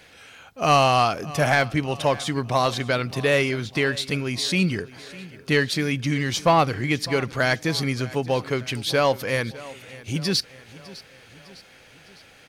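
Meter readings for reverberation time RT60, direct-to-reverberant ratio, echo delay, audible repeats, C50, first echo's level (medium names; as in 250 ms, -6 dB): no reverb, no reverb, 605 ms, 3, no reverb, -19.0 dB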